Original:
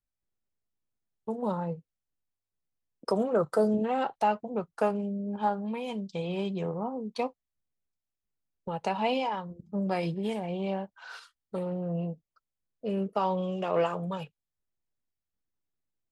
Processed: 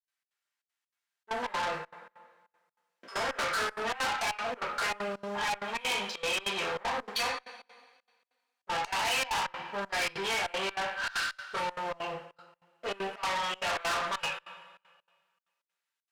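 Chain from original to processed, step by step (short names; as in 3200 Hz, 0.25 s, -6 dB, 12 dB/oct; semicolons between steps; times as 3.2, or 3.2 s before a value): one-sided fold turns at -23 dBFS; limiter -24 dBFS, peak gain reduction 9 dB; 1.63–3.51 doubler 15 ms -5 dB; sample leveller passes 2; resonant high-pass 1600 Hz, resonance Q 1.5; tilt -3.5 dB/oct; two-slope reverb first 0.43 s, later 1.6 s, from -18 dB, DRR -5.5 dB; step gate ".xx.xxxx" 195 bpm -24 dB; tube stage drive 38 dB, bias 0.2; bell 7100 Hz +4.5 dB 3 oct; gain +8.5 dB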